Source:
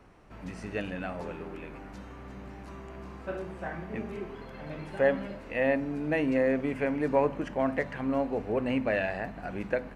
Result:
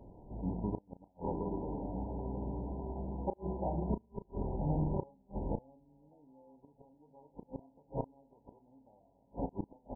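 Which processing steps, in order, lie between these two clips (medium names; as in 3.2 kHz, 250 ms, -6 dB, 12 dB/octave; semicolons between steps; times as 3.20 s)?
sorted samples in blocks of 32 samples; 3.89–6.09 s: bass shelf 130 Hz +10.5 dB; echo that smears into a reverb 1022 ms, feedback 46%, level -11 dB; vibrato 3 Hz 18 cents; inverted gate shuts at -23 dBFS, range -38 dB; brick-wall FIR low-pass 1 kHz; doubling 34 ms -12 dB; trim +4.5 dB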